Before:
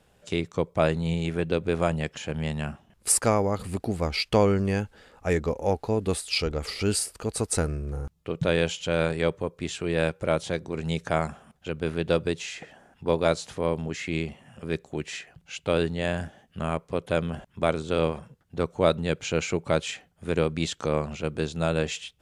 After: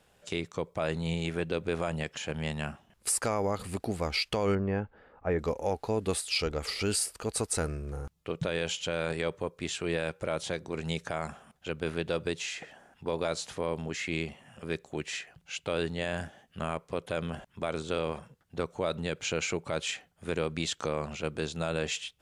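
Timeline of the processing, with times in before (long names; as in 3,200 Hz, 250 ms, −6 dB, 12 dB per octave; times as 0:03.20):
0:04.55–0:05.39: low-pass filter 1,400 Hz
whole clip: low-shelf EQ 440 Hz −6 dB; brickwall limiter −18.5 dBFS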